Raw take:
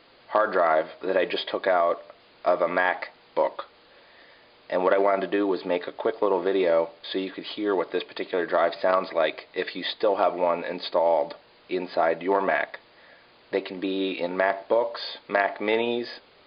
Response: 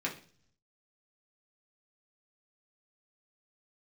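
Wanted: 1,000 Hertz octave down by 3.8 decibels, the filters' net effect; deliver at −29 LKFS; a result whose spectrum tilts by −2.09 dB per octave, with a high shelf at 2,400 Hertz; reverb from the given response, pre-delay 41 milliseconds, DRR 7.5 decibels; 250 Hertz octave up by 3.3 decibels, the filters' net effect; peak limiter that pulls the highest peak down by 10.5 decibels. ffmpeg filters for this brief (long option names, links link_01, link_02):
-filter_complex "[0:a]equalizer=frequency=250:width_type=o:gain=5,equalizer=frequency=1000:width_type=o:gain=-7,highshelf=frequency=2400:gain=6.5,alimiter=limit=-18.5dB:level=0:latency=1,asplit=2[link_01][link_02];[1:a]atrim=start_sample=2205,adelay=41[link_03];[link_02][link_03]afir=irnorm=-1:irlink=0,volume=-12.5dB[link_04];[link_01][link_04]amix=inputs=2:normalize=0"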